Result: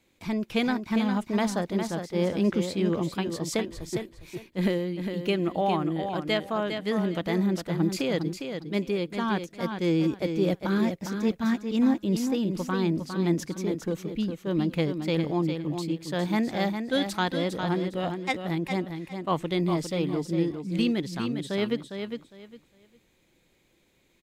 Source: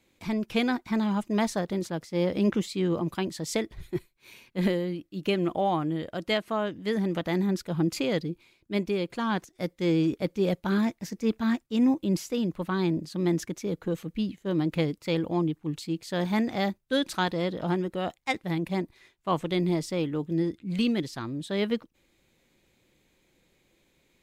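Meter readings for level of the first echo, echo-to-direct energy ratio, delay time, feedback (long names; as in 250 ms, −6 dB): −7.0 dB, −7.0 dB, 406 ms, 22%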